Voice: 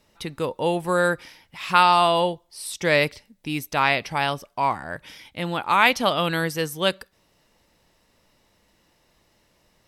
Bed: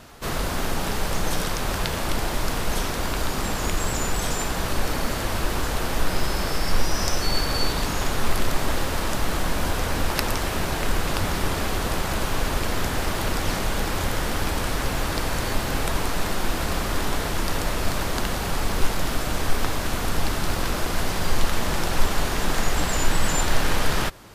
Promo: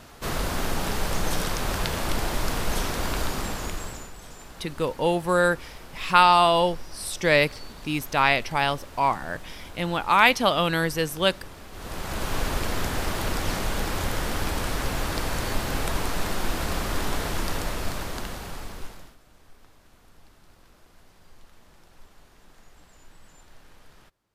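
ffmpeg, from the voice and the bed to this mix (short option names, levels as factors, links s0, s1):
-filter_complex "[0:a]adelay=4400,volume=1[s0];[1:a]volume=5.31,afade=t=out:st=3.19:d=0.92:silence=0.141254,afade=t=in:st=11.71:d=0.65:silence=0.158489,afade=t=out:st=17.34:d=1.82:silence=0.0375837[s1];[s0][s1]amix=inputs=2:normalize=0"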